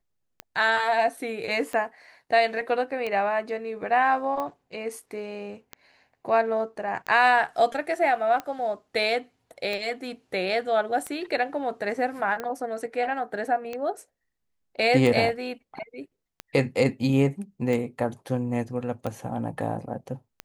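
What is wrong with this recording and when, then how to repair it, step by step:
scratch tick 45 rpm −18 dBFS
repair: click removal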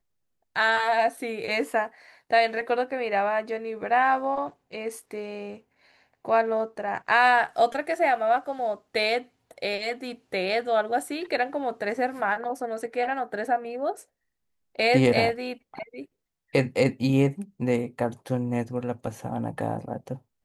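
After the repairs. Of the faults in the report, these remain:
none of them is left

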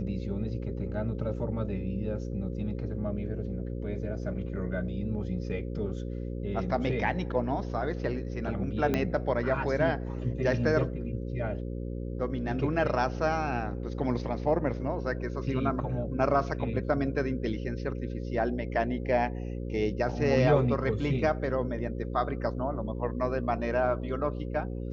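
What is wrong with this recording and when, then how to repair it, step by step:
mains buzz 60 Hz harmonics 9 −35 dBFS
0:08.94: click −14 dBFS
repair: click removal
hum removal 60 Hz, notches 9

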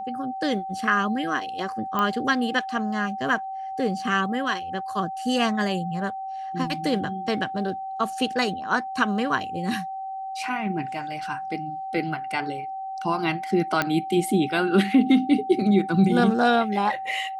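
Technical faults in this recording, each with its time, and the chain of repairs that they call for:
whistle 770 Hz −30 dBFS
0:01.99: click −12 dBFS
0:13.82: click −8 dBFS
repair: click removal
notch filter 770 Hz, Q 30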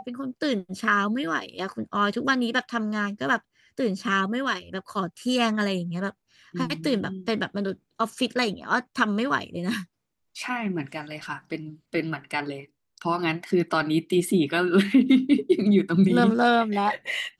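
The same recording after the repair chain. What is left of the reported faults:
0:13.82: click

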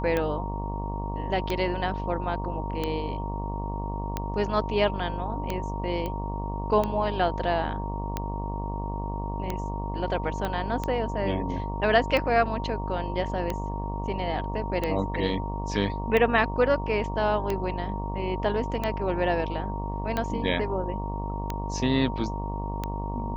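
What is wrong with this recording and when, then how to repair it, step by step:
mains buzz 50 Hz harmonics 23 −32 dBFS
scratch tick 45 rpm −14 dBFS
whistle 930 Hz −35 dBFS
0:06.06: click −19 dBFS
0:10.45: click −16 dBFS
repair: click removal
notch filter 930 Hz, Q 30
hum removal 50 Hz, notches 23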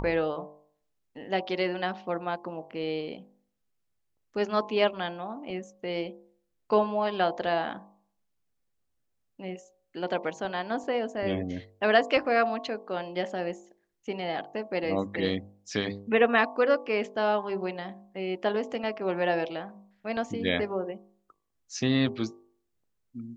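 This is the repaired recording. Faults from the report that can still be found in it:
0:10.45: click

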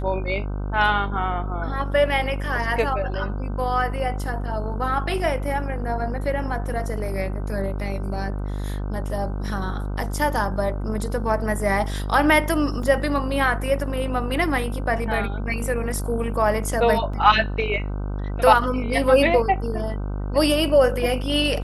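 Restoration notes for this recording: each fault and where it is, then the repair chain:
mains buzz 50 Hz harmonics 31 −27 dBFS
0:12.83: drop-out 3.3 ms
0:17.13: drop-out 4.8 ms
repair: hum removal 50 Hz, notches 31
repair the gap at 0:12.83, 3.3 ms
repair the gap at 0:17.13, 4.8 ms

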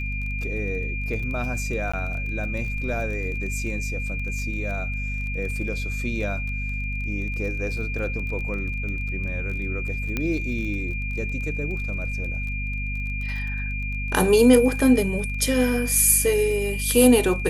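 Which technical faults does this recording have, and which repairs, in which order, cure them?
surface crackle 22 per second −32 dBFS
mains hum 50 Hz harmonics 5 −29 dBFS
whistle 2,400 Hz −31 dBFS
0:01.92–0:01.94: drop-out 15 ms
0:10.17: click −12 dBFS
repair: click removal
notch filter 2,400 Hz, Q 30
hum removal 50 Hz, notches 5
repair the gap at 0:01.92, 15 ms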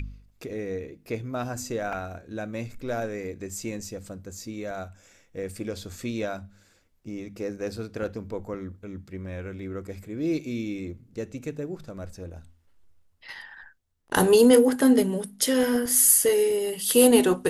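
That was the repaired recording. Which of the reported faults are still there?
none of them is left

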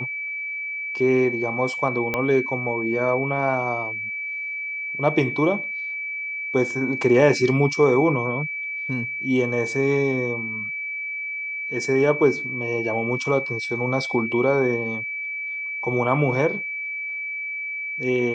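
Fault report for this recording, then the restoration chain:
whistle 2,300 Hz −27 dBFS
0:02.14: click −10 dBFS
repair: click removal
notch filter 2,300 Hz, Q 30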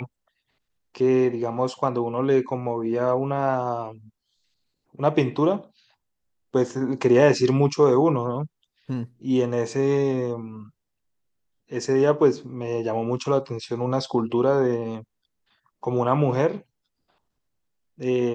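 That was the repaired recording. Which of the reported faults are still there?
0:02.14: click

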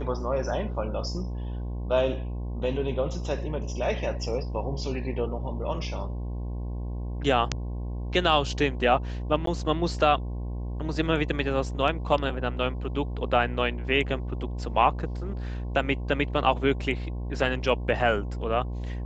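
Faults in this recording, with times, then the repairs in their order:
mains buzz 60 Hz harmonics 18 −32 dBFS
0:09.46–0:09.47: drop-out 13 ms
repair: hum removal 60 Hz, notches 18
repair the gap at 0:09.46, 13 ms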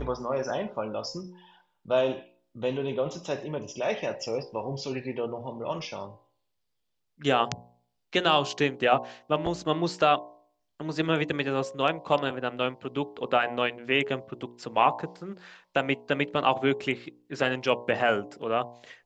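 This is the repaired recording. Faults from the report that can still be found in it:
none of them is left

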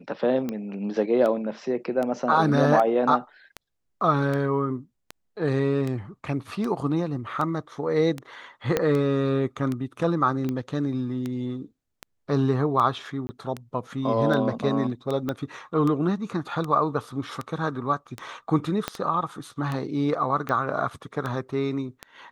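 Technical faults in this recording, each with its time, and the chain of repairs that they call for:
scratch tick 78 rpm −17 dBFS
0:08.77: click −8 dBFS
0:13.27–0:13.29: drop-out 20 ms
0:15.29: click −15 dBFS
0:18.88: click −11 dBFS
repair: click removal
repair the gap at 0:13.27, 20 ms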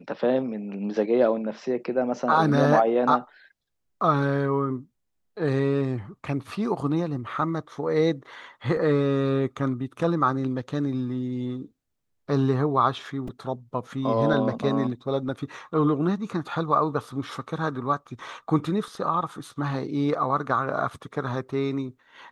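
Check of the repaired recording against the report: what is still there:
0:08.77: click
0:15.29: click
0:18.88: click

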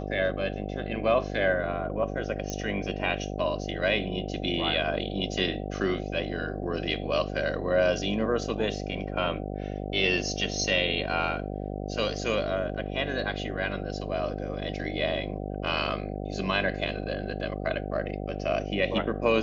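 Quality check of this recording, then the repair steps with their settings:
mains buzz 50 Hz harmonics 15 −34 dBFS
0:02.50: click −18 dBFS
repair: click removal
hum removal 50 Hz, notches 15

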